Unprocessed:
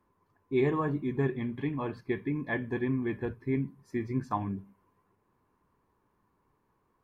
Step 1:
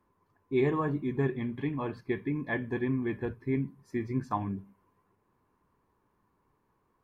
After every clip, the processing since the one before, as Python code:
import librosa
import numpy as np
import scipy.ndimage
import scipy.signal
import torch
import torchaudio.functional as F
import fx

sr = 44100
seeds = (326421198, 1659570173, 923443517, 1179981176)

y = x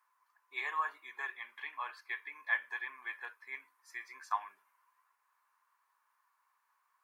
y = scipy.signal.sosfilt(scipy.signal.butter(4, 1100.0, 'highpass', fs=sr, output='sos'), x)
y = fx.peak_eq(y, sr, hz=3200.0, db=-3.5, octaves=1.2)
y = F.gain(torch.from_numpy(y), 4.5).numpy()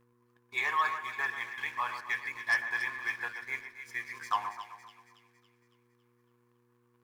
y = fx.dmg_buzz(x, sr, base_hz=120.0, harmonics=4, level_db=-66.0, tilt_db=-2, odd_only=False)
y = fx.leveller(y, sr, passes=2)
y = fx.echo_split(y, sr, split_hz=2000.0, low_ms=130, high_ms=278, feedback_pct=52, wet_db=-9.0)